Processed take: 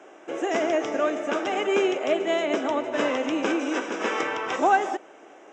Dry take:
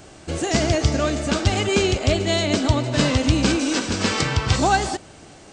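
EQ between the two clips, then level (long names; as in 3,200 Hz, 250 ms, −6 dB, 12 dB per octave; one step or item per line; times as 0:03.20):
moving average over 10 samples
high-pass filter 330 Hz 24 dB per octave
0.0 dB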